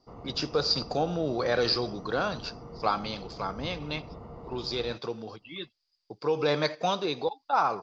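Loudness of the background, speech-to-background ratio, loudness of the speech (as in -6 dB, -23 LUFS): -45.0 LUFS, 15.0 dB, -30.0 LUFS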